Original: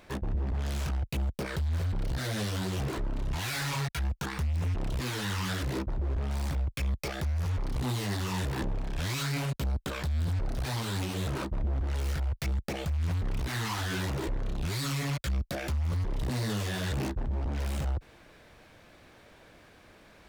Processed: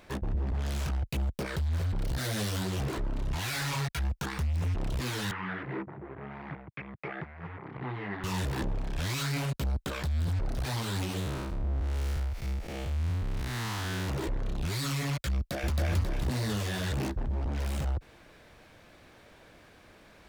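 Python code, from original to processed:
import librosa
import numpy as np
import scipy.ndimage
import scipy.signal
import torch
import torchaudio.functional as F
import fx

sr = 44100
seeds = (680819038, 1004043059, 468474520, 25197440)

y = fx.high_shelf(x, sr, hz=7100.0, db=6.0, at=(1.98, 2.63))
y = fx.cabinet(y, sr, low_hz=140.0, low_slope=24, high_hz=2200.0, hz=(240.0, 560.0, 2000.0), db=(-9, -7, 4), at=(5.31, 8.24))
y = fx.spec_blur(y, sr, span_ms=157.0, at=(11.19, 14.07), fade=0.02)
y = fx.echo_throw(y, sr, start_s=15.36, length_s=0.4, ms=270, feedback_pct=45, wet_db=-0.5)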